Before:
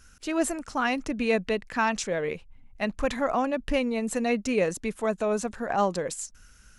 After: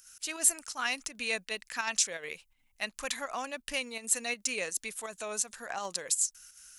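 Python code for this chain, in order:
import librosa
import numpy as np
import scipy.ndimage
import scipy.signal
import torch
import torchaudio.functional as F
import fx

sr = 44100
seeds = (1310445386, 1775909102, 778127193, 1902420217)

y = fx.volume_shaper(x, sr, bpm=83, per_beat=2, depth_db=-7, release_ms=63.0, shape='slow start')
y = F.preemphasis(torch.from_numpy(y), 0.97).numpy()
y = y * librosa.db_to_amplitude(8.5)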